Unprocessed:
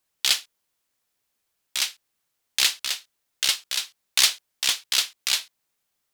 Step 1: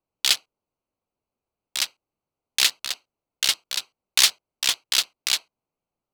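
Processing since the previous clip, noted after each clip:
adaptive Wiener filter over 25 samples
level +2 dB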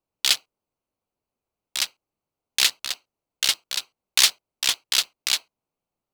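noise that follows the level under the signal 27 dB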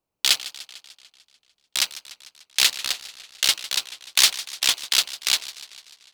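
in parallel at −1 dB: brickwall limiter −9.5 dBFS, peak gain reduction 8 dB
on the sum: feedback echo with a swinging delay time 148 ms, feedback 62%, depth 151 cents, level −16 dB
level −2.5 dB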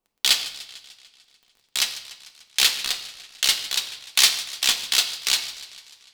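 surface crackle 18 per second −42 dBFS
on a send at −5 dB: convolution reverb RT60 0.80 s, pre-delay 3 ms
on the sum: level −1 dB

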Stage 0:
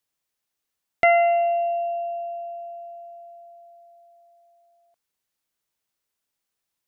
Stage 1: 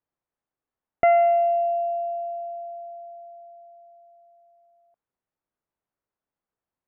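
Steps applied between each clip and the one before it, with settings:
low-pass filter 1,200 Hz 12 dB per octave
level +1 dB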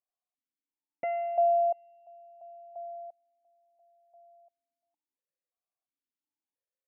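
formant filter that steps through the vowels 2.9 Hz

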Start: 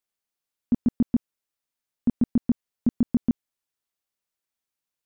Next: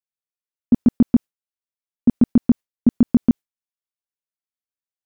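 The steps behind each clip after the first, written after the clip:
noise gate with hold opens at −17 dBFS
level +8 dB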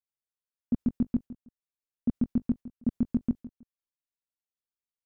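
low-shelf EQ 160 Hz +9.5 dB
repeating echo 160 ms, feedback 23%, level −23 dB
brickwall limiter −10 dBFS, peak gain reduction 7.5 dB
level −8.5 dB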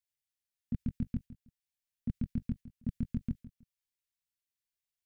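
flat-topped bell 530 Hz −16 dB 2.8 octaves
level +2.5 dB

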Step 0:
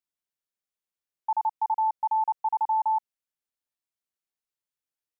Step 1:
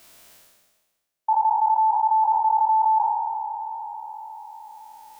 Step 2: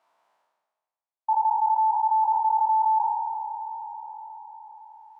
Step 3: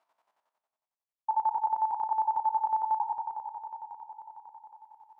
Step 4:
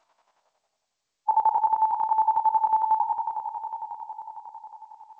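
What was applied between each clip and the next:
peak hold with a decay on every bin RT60 2.30 s; parametric band 640 Hz +8.5 dB 0.25 octaves; reversed playback; upward compression, threshold −29 dBFS; reversed playback; level +4.5 dB
resonant band-pass 910 Hz, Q 3.7; level −2 dB
square-wave tremolo 11 Hz, depth 65%, duty 40%; level −3.5 dB
gain on a spectral selection 0:00.41–0:01.63, 390–860 Hz +6 dB; dynamic equaliser 700 Hz, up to −7 dB, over −45 dBFS, Q 4; level +7.5 dB; G.722 64 kbit/s 16,000 Hz

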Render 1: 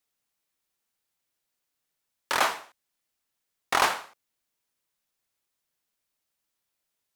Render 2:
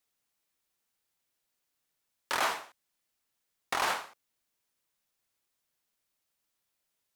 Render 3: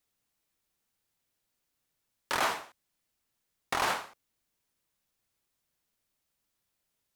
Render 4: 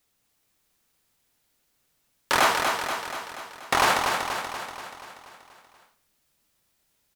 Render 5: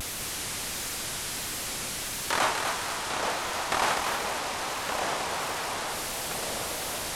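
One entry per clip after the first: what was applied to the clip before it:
brickwall limiter −18.5 dBFS, peak gain reduction 9.5 dB
low-shelf EQ 270 Hz +8 dB
repeating echo 240 ms, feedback 59%, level −5 dB; level +8.5 dB
linear delta modulator 64 kbit/s, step −22 dBFS; pitch vibrato 1.5 Hz 83 cents; delay with pitch and tempo change per echo 202 ms, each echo −4 semitones, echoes 3, each echo −6 dB; level −5.5 dB

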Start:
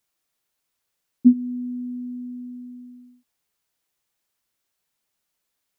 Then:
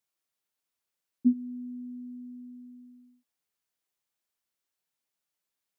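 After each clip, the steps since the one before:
low-shelf EQ 86 Hz −7.5 dB
level −8.5 dB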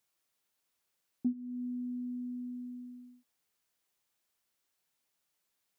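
downward compressor 2.5 to 1, threshold −42 dBFS, peak gain reduction 15.5 dB
level +5 dB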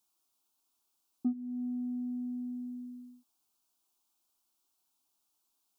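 in parallel at −6 dB: soft clipping −35 dBFS, distortion −10 dB
on the sum: phaser with its sweep stopped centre 510 Hz, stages 6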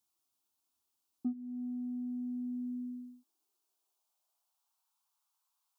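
high-pass filter sweep 71 Hz → 990 Hz, 0:01.19–0:04.91
level −4.5 dB

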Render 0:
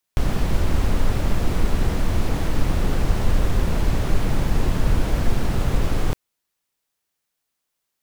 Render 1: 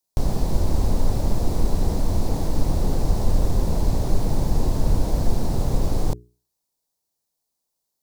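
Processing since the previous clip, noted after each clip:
flat-topped bell 2,000 Hz −12 dB
mains-hum notches 60/120/180/240/300/360/420 Hz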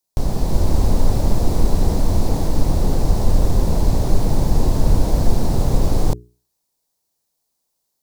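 automatic gain control gain up to 4 dB
level +1.5 dB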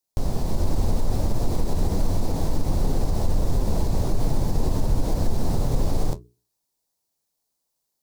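brickwall limiter −8.5 dBFS, peak gain reduction 6.5 dB
flanger 1.4 Hz, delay 6.8 ms, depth 6.9 ms, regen −53%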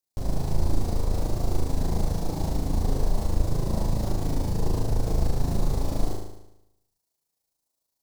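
amplitude modulation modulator 27 Hz, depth 35%
on a send: flutter between parallel walls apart 6.4 metres, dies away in 0.86 s
on the sum: level −3.5 dB

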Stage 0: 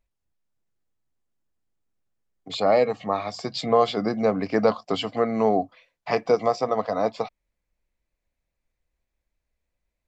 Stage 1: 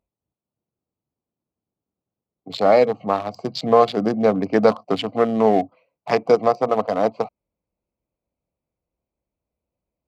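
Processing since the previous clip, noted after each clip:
adaptive Wiener filter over 25 samples
high-pass filter 100 Hz 12 dB per octave
level +5 dB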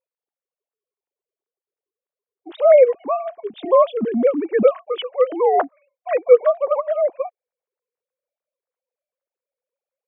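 three sine waves on the formant tracks
level +1.5 dB

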